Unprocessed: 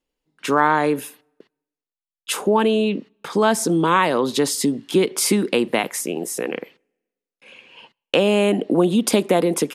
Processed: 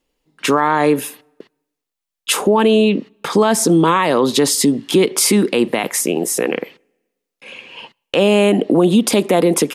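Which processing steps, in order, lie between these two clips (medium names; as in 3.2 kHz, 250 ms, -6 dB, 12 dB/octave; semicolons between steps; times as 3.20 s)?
band-stop 1.5 kHz, Q 20; in parallel at -3 dB: compression, threshold -28 dBFS, peak gain reduction 16 dB; on the sum: peak limiter -9.5 dBFS, peak gain reduction 8 dB; trim +5 dB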